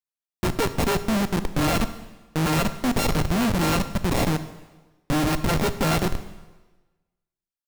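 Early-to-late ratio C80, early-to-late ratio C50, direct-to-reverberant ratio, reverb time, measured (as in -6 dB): 14.5 dB, 13.0 dB, 11.0 dB, 1.2 s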